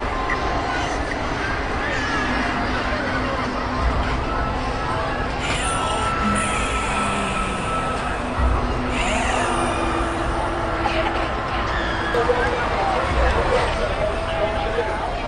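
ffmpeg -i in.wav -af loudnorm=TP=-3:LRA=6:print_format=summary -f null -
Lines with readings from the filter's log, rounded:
Input Integrated:    -21.8 LUFS
Input True Peak:      -6.0 dBTP
Input LRA:             1.6 LU
Input Threshold:     -31.8 LUFS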